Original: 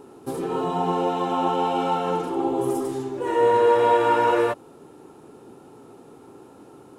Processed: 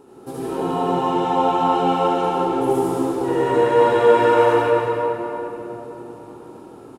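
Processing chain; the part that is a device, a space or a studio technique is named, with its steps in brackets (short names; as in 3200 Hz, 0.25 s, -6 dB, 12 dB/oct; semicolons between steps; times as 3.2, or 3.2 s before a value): cave (echo 0.36 s -11.5 dB; reverb RT60 3.6 s, pre-delay 66 ms, DRR -7 dB); gain -3 dB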